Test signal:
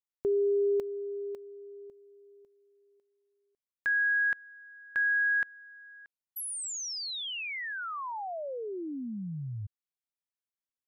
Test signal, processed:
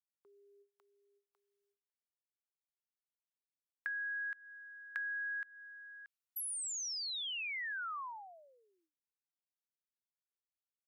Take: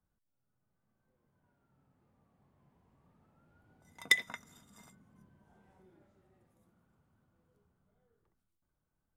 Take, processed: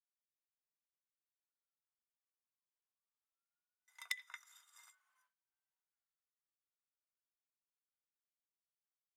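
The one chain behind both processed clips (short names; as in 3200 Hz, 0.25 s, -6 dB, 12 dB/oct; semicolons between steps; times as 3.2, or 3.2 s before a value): inverse Chebyshev high-pass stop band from 190 Hz, stop band 80 dB; gate with hold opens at -60 dBFS, hold 0.338 s, range -26 dB; compressor 20:1, threshold -36 dBFS; gain -1.5 dB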